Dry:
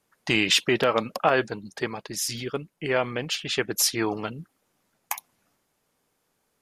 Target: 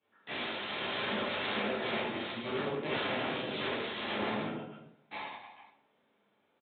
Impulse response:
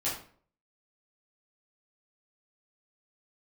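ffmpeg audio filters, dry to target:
-filter_complex "[0:a]aecho=1:1:50|115|199.5|309.4|452.2:0.631|0.398|0.251|0.158|0.1,flanger=delay=8.8:depth=5.8:regen=-38:speed=0.96:shape=sinusoidal,bandreject=f=60:t=h:w=6,bandreject=f=120:t=h:w=6,bandreject=f=180:t=h:w=6,bandreject=f=240:t=h:w=6,bandreject=f=300:t=h:w=6,bandreject=f=360:t=h:w=6,bandreject=f=420:t=h:w=6,bandreject=f=480:t=h:w=6,bandreject=f=540:t=h:w=6,bandreject=f=600:t=h:w=6,alimiter=limit=-17.5dB:level=0:latency=1:release=16,asettb=1/sr,asplit=3[a][b][c];[a]atrim=end=2.204[d];[b]atrim=start=2.2:end=4.38,asetpts=PTS-STARTPTS,afade=t=in:d=0.004:c=qsin,afade=t=out:st=2.176:d=0.004:c=qsin,equalizer=f=2.8k:t=o:w=1.7:g=-10[e];[c]atrim=start=4.376[f];[d][e]acrossfade=d=0.004:c1=hsin:c2=qsin[g];[g][f]acrossfade=d=0.004:c1=qsin:c2=hsin,aeval=exprs='(mod(33.5*val(0)+1,2)-1)/33.5':c=same,equalizer=f=1.4k:t=o:w=1.4:g=-3[h];[1:a]atrim=start_sample=2205,asetrate=33516,aresample=44100[i];[h][i]afir=irnorm=-1:irlink=0,aresample=8000,aresample=44100,highpass=170,volume=-3dB"

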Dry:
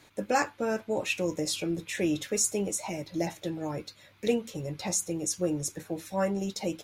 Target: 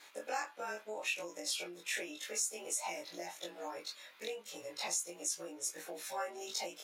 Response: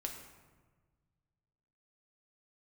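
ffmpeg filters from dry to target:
-af "afftfilt=real='re':imag='-im':win_size=2048:overlap=0.75,acompressor=threshold=-40dB:ratio=5,highpass=700,volume=7dB"

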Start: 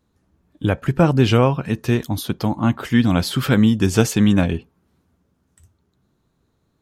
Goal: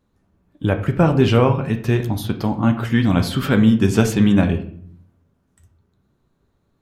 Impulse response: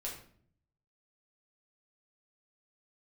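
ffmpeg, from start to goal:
-filter_complex "[0:a]asplit=2[a][b];[1:a]atrim=start_sample=2205,lowpass=3.5k[c];[b][c]afir=irnorm=-1:irlink=0,volume=-1dB[d];[a][d]amix=inputs=2:normalize=0,volume=-3.5dB"

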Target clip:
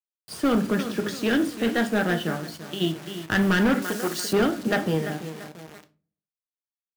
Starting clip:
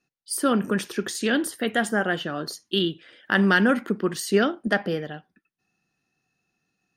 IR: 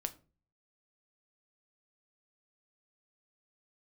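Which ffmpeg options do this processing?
-filter_complex "[0:a]aeval=exprs='if(lt(val(0),0),0.447*val(0),val(0))':c=same,lowpass=5.1k,lowshelf=f=220:g=6.5,asplit=2[a][b];[b]adelay=340,lowpass=f=3.7k:p=1,volume=-12dB,asplit=2[c][d];[d]adelay=340,lowpass=f=3.7k:p=1,volume=0.38,asplit=2[e][f];[f]adelay=340,lowpass=f=3.7k:p=1,volume=0.38,asplit=2[g][h];[h]adelay=340,lowpass=f=3.7k:p=1,volume=0.38[i];[a][c][e][g][i]amix=inputs=5:normalize=0,asplit=3[j][k][l];[j]afade=t=out:st=2.35:d=0.02[m];[k]acompressor=threshold=-34dB:ratio=2.5,afade=t=in:st=2.35:d=0.02,afade=t=out:st=2.8:d=0.02[n];[l]afade=t=in:st=2.8:d=0.02[o];[m][n][o]amix=inputs=3:normalize=0,acrusher=bits=6:mix=0:aa=0.000001,highpass=f=82:w=0.5412,highpass=f=82:w=1.3066[p];[1:a]atrim=start_sample=2205,asetrate=42777,aresample=44100[q];[p][q]afir=irnorm=-1:irlink=0,volume=18dB,asoftclip=hard,volume=-18dB,asettb=1/sr,asplit=3[r][s][t];[r]atrim=end=3.824[u];[s]atrim=start=3.82:end=4.33,asetpts=PTS-STARTPTS,afade=t=in:d=0.004:c=qsin,afade=t=out:st=0.506:d=0.004:c=qsin,bass=f=250:g=-13,treble=f=4k:g=10[v];[t]atrim=start=4.326[w];[u][v]acrossfade=d=0.004:c1=hsin:c2=qsin[x];[x][w]acrossfade=d=0.004:c1=qsin:c2=hsin,volume=2dB"

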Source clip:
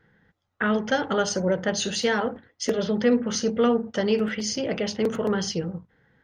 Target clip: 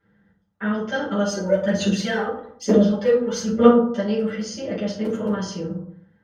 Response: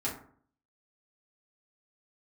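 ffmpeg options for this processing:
-filter_complex "[0:a]asplit=3[a][b][c];[a]afade=t=out:st=1.28:d=0.02[d];[b]aphaser=in_gain=1:out_gain=1:delay=2.5:decay=0.7:speed=1.1:type=sinusoidal,afade=t=in:st=1.28:d=0.02,afade=t=out:st=3.68:d=0.02[e];[c]afade=t=in:st=3.68:d=0.02[f];[d][e][f]amix=inputs=3:normalize=0[g];[1:a]atrim=start_sample=2205,afade=t=out:st=0.32:d=0.01,atrim=end_sample=14553,asetrate=32634,aresample=44100[h];[g][h]afir=irnorm=-1:irlink=0,volume=-9dB"

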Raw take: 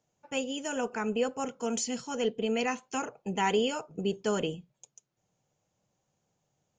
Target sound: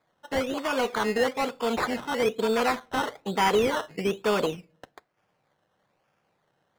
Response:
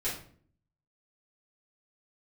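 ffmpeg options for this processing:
-filter_complex "[0:a]acrusher=samples=15:mix=1:aa=0.000001:lfo=1:lforange=9:lforate=1.1,asplit=2[a][b];[b]highpass=f=720:p=1,volume=13dB,asoftclip=type=tanh:threshold=-16dB[c];[a][c]amix=inputs=2:normalize=0,lowpass=f=2.7k:p=1,volume=-6dB,asplit=2[d][e];[1:a]atrim=start_sample=2205[f];[e][f]afir=irnorm=-1:irlink=0,volume=-28dB[g];[d][g]amix=inputs=2:normalize=0,volume=3dB"

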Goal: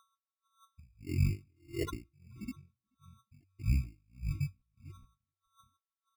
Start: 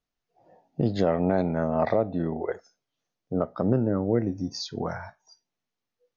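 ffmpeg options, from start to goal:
-filter_complex "[0:a]afftfilt=real='re*gte(hypot(re,im),0.178)':imag='im*gte(hypot(re,im),0.178)':win_size=1024:overlap=0.75,equalizer=f=550:w=0.55:g=-11,bandreject=f=60:t=h:w=6,bandreject=f=120:t=h:w=6,bandreject=f=180:t=h:w=6,asplit=2[a][b];[b]acompressor=threshold=-43dB:ratio=8,volume=-2dB[c];[a][c]amix=inputs=2:normalize=0,aeval=exprs='val(0)+0.000631*sin(2*PI*2100*n/s)':c=same,asetrate=23361,aresample=44100,atempo=1.88775,aphaser=in_gain=1:out_gain=1:delay=3.2:decay=0.63:speed=0.89:type=triangular,acrusher=samples=18:mix=1:aa=0.000001,asplit=2[d][e];[e]adelay=430,lowpass=f=2.1k:p=1,volume=-15.5dB,asplit=2[f][g];[g]adelay=430,lowpass=f=2.1k:p=1,volume=0.16[h];[d][f][h]amix=inputs=3:normalize=0,aeval=exprs='val(0)*pow(10,-39*(0.5-0.5*cos(2*PI*1.6*n/s))/20)':c=same"

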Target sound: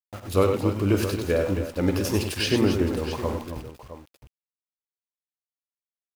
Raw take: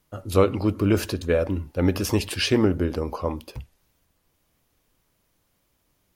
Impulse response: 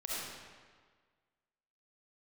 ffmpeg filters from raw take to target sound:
-af "aeval=exprs='val(0)*gte(abs(val(0)),0.0188)':c=same,aecho=1:1:49|92|100|268|664:0.251|0.299|0.398|0.316|0.237,volume=-2.5dB"

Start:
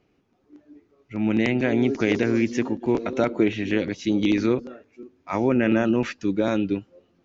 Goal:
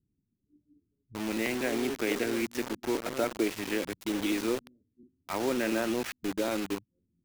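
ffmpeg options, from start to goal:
-filter_complex "[0:a]acrossover=split=250[a][b];[a]acompressor=threshold=-42dB:ratio=6[c];[b]acrusher=bits=4:mix=0:aa=0.000001[d];[c][d]amix=inputs=2:normalize=0,volume=-6.5dB"

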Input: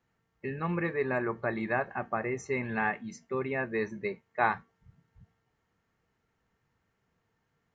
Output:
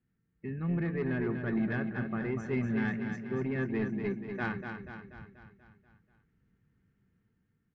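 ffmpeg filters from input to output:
-af "firequalizer=gain_entry='entry(120,0);entry(200,3);entry(630,-18);entry(980,-18);entry(1500,-9);entry(5000,-19)':delay=0.05:min_phase=1,dynaudnorm=f=140:g=11:m=5.5dB,asoftclip=type=tanh:threshold=-25dB,aecho=1:1:242|484|726|968|1210|1452|1694:0.447|0.246|0.135|0.0743|0.0409|0.0225|0.0124"

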